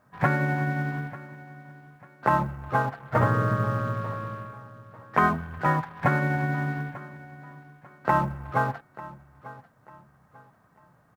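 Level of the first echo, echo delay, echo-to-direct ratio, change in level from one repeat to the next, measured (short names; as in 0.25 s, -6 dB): -18.0 dB, 0.894 s, -17.5 dB, -10.0 dB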